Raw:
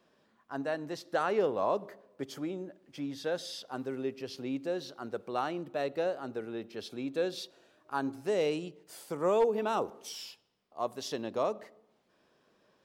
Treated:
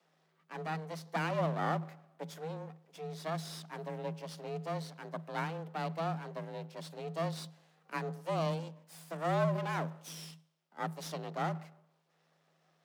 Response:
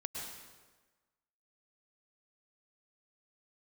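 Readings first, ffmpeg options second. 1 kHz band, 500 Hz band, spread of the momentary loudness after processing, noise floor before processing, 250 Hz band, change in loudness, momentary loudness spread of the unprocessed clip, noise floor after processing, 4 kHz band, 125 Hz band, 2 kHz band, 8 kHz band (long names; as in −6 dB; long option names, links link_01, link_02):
−1.5 dB, −7.0 dB, 14 LU, −71 dBFS, −3.5 dB, −4.0 dB, 14 LU, −74 dBFS, −4.5 dB, +10.0 dB, −0.5 dB, −3.0 dB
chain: -af "equalizer=frequency=140:width=2.1:gain=-14,aeval=exprs='max(val(0),0)':channel_layout=same,afreqshift=160"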